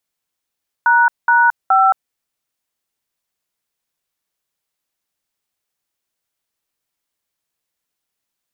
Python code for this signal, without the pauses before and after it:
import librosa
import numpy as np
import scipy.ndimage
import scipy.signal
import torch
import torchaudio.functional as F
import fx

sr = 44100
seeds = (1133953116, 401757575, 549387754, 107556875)

y = fx.dtmf(sr, digits='##5', tone_ms=221, gap_ms=200, level_db=-11.5)